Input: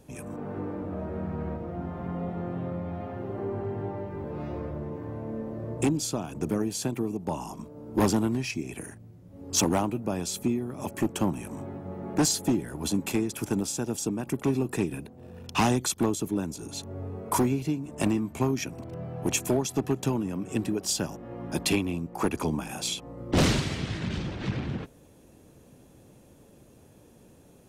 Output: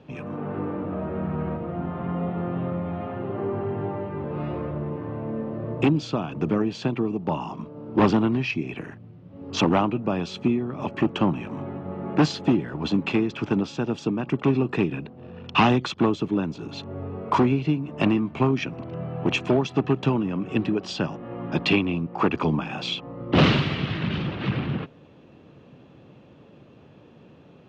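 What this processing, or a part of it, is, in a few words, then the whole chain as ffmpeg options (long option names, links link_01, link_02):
guitar cabinet: -filter_complex "[0:a]asettb=1/sr,asplit=3[link_01][link_02][link_03];[link_01]atrim=end=12.974[link_04];[link_02]atrim=start=12.97:end=13.83,asetpts=PTS-STARTPTS,afade=type=in:duration=0.004:curve=qsin,afade=type=out:start_time=0.856:duration=0.004:curve=qsin,lowpass=8900[link_05];[link_03]atrim=start=13.826[link_06];[link_04][link_05]acrossfade=duration=0.004:curve1=hsin:curve2=qsin[link_07];[link_07][link_06]acrossfade=duration=0.004:curve1=qsin:curve2=hsin,highpass=100,equalizer=frequency=150:width_type=q:width=4:gain=4,equalizer=frequency=1200:width_type=q:width=4:gain=5,equalizer=frequency=2800:width_type=q:width=4:gain=5,lowpass=frequency=3900:width=0.5412,lowpass=frequency=3900:width=1.3066,volume=4.5dB"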